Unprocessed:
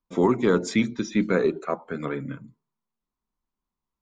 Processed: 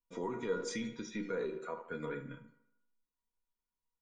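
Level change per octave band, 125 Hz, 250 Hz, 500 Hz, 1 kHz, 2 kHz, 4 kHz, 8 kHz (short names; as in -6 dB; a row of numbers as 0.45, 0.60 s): -17.5, -17.5, -14.0, -13.5, -12.5, -11.0, -9.0 dB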